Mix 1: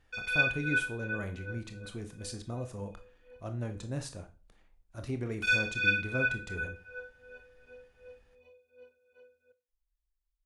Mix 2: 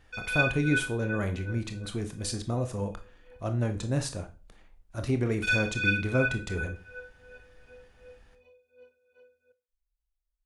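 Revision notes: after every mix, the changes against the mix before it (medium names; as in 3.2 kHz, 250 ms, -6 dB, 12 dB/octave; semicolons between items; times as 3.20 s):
speech +8.0 dB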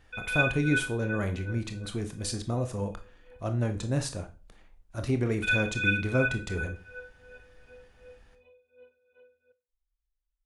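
background: add brick-wall FIR low-pass 4.1 kHz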